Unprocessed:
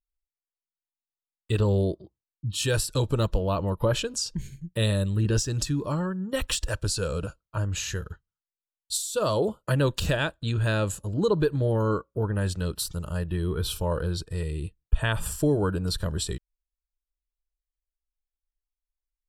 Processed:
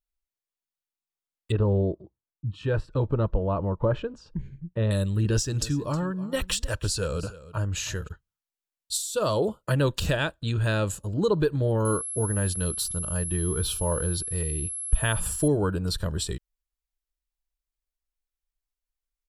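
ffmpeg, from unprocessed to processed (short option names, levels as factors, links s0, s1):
-filter_complex "[0:a]asettb=1/sr,asplit=3[s0][s1][s2];[s0]atrim=end=1.524[s3];[s1]atrim=start=1.52:end=4.91,asetpts=PTS-STARTPTS,afade=t=in:d=0.004:c=qsin,afade=t=out:st=3.386:d=0.004:c=qsin,lowpass=1400[s4];[s2]atrim=start=4.906[s5];[s3][s4]acrossfade=d=0.004:c1=hsin:c2=qsin[s6];[s6][s5]acrossfade=d=0.004:c1=qsin:c2=hsin,asplit=3[s7][s8][s9];[s7]afade=t=out:st=5.5:d=0.02[s10];[s8]aecho=1:1:315:0.141,afade=t=in:st=5.5:d=0.02,afade=t=out:st=8.07:d=0.02[s11];[s9]afade=t=in:st=8.07:d=0.02[s12];[s10][s11][s12]amix=inputs=3:normalize=0,asettb=1/sr,asplit=3[s13][s14][s15];[s13]atrim=end=11.854[s16];[s14]atrim=start=11.85:end=15.48,asetpts=PTS-STARTPTS,afade=t=in:d=0.004:c=qsin,afade=t=out:st=3.626:d=0.004:c=qsin,aeval=exprs='val(0)+0.0282*sin(2*PI*11000*n/s)':c=same[s17];[s15]atrim=start=15.476[s18];[s16][s17]acrossfade=d=0.004:c1=hsin:c2=qsin[s19];[s19][s18]acrossfade=d=0.004:c1=qsin:c2=hsin"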